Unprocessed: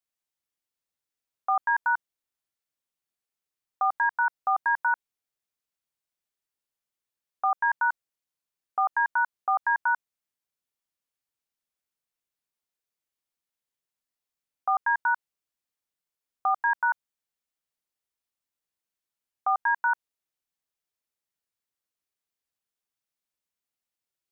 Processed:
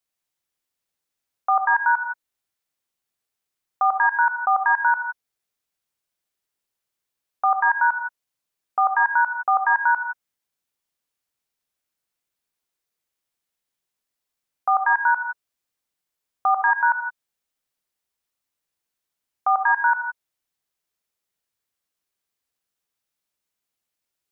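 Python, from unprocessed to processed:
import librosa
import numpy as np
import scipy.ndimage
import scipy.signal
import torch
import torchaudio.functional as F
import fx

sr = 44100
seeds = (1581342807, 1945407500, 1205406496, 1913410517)

y = fx.rev_gated(x, sr, seeds[0], gate_ms=190, shape='rising', drr_db=6.5)
y = y * librosa.db_to_amplitude(5.0)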